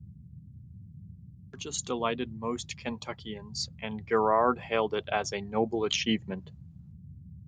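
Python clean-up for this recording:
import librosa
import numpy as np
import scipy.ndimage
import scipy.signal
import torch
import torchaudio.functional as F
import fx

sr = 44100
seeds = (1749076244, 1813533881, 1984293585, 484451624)

y = fx.noise_reduce(x, sr, print_start_s=1.04, print_end_s=1.54, reduce_db=24.0)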